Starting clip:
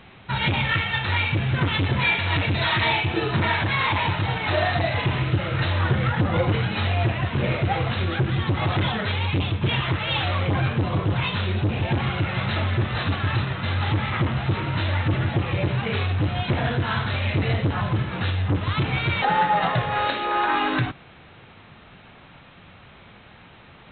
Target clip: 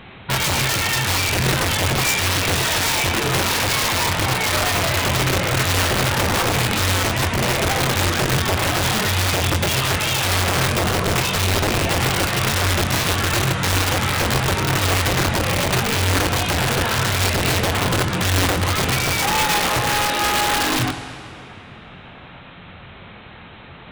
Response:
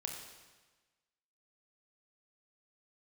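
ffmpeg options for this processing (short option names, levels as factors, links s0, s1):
-filter_complex "[0:a]alimiter=limit=0.133:level=0:latency=1:release=66,aeval=exprs='(mod(10.6*val(0)+1,2)-1)/10.6':c=same,asplit=2[s0][s1];[1:a]atrim=start_sample=2205,asetrate=22932,aresample=44100,adelay=23[s2];[s1][s2]afir=irnorm=-1:irlink=0,volume=0.282[s3];[s0][s3]amix=inputs=2:normalize=0,volume=2.11"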